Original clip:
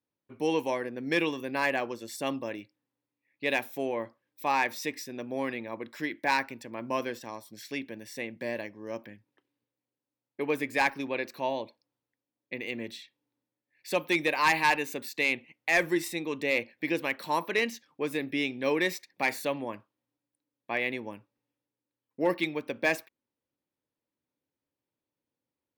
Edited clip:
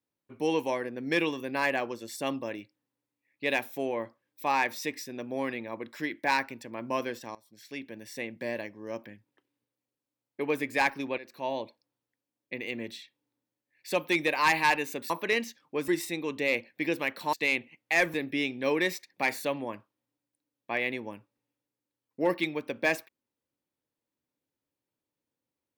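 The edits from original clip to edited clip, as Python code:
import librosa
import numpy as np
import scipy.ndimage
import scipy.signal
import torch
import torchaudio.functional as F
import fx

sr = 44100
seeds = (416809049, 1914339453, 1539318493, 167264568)

y = fx.edit(x, sr, fx.fade_in_from(start_s=7.35, length_s=0.75, floor_db=-18.0),
    fx.fade_in_from(start_s=11.18, length_s=0.39, floor_db=-16.0),
    fx.swap(start_s=15.1, length_s=0.81, other_s=17.36, other_length_s=0.78), tone=tone)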